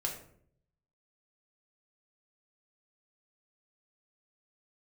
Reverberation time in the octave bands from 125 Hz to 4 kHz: 1.0, 0.80, 0.70, 0.55, 0.45, 0.35 s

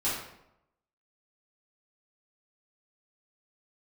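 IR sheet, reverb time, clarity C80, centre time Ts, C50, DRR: 0.85 s, 5.5 dB, 55 ms, 1.5 dB, -11.0 dB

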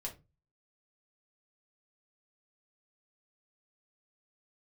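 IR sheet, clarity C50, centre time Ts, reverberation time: 13.0 dB, 13 ms, 0.25 s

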